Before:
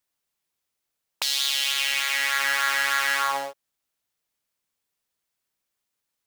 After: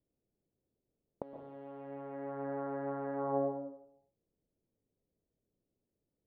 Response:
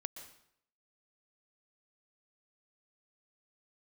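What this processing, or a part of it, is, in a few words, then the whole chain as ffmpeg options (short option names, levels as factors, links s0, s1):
next room: -filter_complex "[0:a]lowpass=f=470:w=0.5412,lowpass=f=470:w=1.3066[s0];[1:a]atrim=start_sample=2205[s1];[s0][s1]afir=irnorm=-1:irlink=0,volume=5.01"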